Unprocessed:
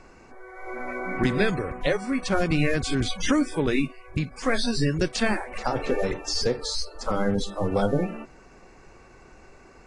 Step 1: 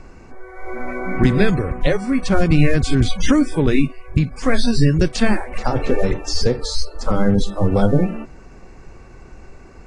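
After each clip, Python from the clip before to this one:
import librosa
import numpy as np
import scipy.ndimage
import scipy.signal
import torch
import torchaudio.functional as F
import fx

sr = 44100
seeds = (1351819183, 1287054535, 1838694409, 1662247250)

y = fx.low_shelf(x, sr, hz=230.0, db=11.0)
y = y * 10.0 ** (3.0 / 20.0)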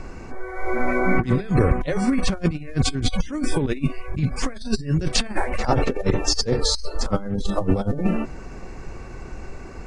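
y = fx.over_compress(x, sr, threshold_db=-19.0, ratio=-0.5)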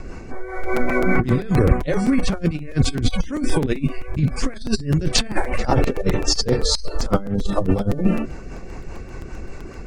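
y = fx.rotary(x, sr, hz=5.0)
y = fx.buffer_crackle(y, sr, first_s=0.63, period_s=0.13, block=256, kind='repeat')
y = y * 10.0 ** (4.0 / 20.0)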